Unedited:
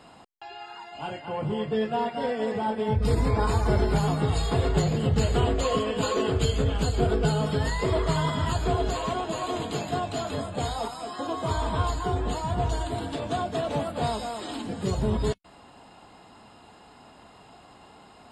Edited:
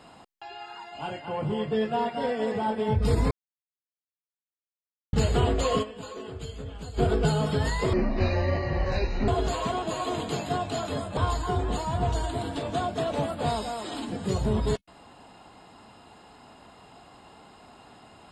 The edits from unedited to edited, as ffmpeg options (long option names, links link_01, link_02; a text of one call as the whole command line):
ffmpeg -i in.wav -filter_complex "[0:a]asplit=8[link_01][link_02][link_03][link_04][link_05][link_06][link_07][link_08];[link_01]atrim=end=3.31,asetpts=PTS-STARTPTS,afade=type=out:start_time=3.306:duration=0.004:curve=hsin[link_09];[link_02]atrim=start=3.31:end=5.13,asetpts=PTS-STARTPTS,volume=0[link_10];[link_03]atrim=start=5.13:end=6,asetpts=PTS-STARTPTS,afade=type=in:duration=0.004:curve=hsin,afade=type=out:start_time=0.69:duration=0.18:curve=exp:silence=0.211349[link_11];[link_04]atrim=start=6:end=6.81,asetpts=PTS-STARTPTS,volume=-13.5dB[link_12];[link_05]atrim=start=6.81:end=7.934,asetpts=PTS-STARTPTS,afade=type=in:duration=0.18:curve=exp:silence=0.211349[link_13];[link_06]atrim=start=7.93:end=8.7,asetpts=PTS-STARTPTS,asetrate=25137,aresample=44100[link_14];[link_07]atrim=start=8.696:end=10.592[link_15];[link_08]atrim=start=11.738[link_16];[link_09][link_10][link_11][link_12][link_13]concat=n=5:v=0:a=1[link_17];[link_17][link_14]acrossfade=duration=0.004:curve1=hsin:curve2=hsin[link_18];[link_18][link_15]acrossfade=duration=0.004:curve1=hsin:curve2=hsin[link_19];[link_19][link_16]acrossfade=duration=0.004:curve1=hsin:curve2=hsin" out.wav